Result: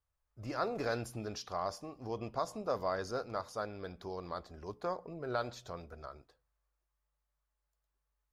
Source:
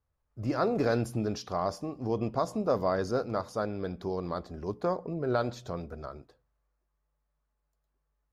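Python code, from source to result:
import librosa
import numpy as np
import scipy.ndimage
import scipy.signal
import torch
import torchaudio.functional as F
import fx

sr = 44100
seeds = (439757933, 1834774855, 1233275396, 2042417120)

y = fx.peak_eq(x, sr, hz=200.0, db=-10.0, octaves=2.9)
y = y * 10.0 ** (-2.5 / 20.0)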